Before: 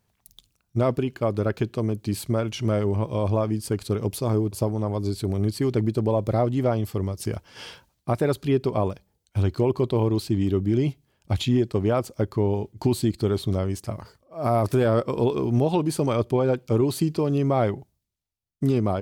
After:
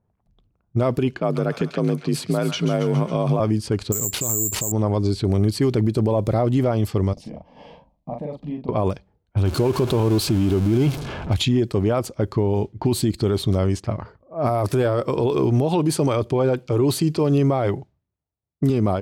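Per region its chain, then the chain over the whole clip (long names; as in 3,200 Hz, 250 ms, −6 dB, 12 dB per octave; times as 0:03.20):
0:01.19–0:03.40: frequency shifter +44 Hz + delay with a high-pass on its return 137 ms, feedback 53%, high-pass 1,400 Hz, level −7 dB
0:03.92–0:04.72: downward compressor 8 to 1, threshold −29 dBFS + bad sample-rate conversion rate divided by 6×, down none, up zero stuff
0:07.13–0:08.69: downward compressor 2.5 to 1, threshold −36 dBFS + phaser with its sweep stopped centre 380 Hz, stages 6 + double-tracking delay 40 ms −3.5 dB
0:09.45–0:11.34: converter with a step at zero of −30.5 dBFS + notch filter 1,900 Hz, Q 8.1
0:14.49–0:18.70: high-pass filter 68 Hz + notch filter 220 Hz, Q 6.1
whole clip: low-pass that shuts in the quiet parts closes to 850 Hz, open at −20 dBFS; automatic gain control gain up to 5 dB; brickwall limiter −13.5 dBFS; level +2 dB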